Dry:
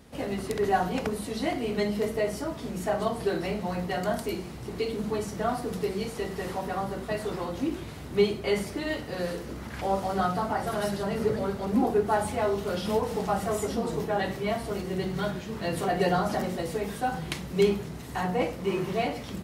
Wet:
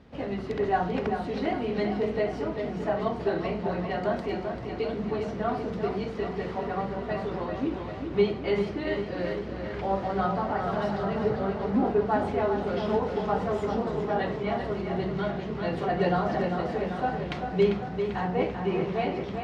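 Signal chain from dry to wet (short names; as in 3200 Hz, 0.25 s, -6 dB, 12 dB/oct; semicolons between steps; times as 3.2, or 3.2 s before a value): air absorption 210 m; on a send: tape echo 0.393 s, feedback 67%, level -6 dB, low-pass 5100 Hz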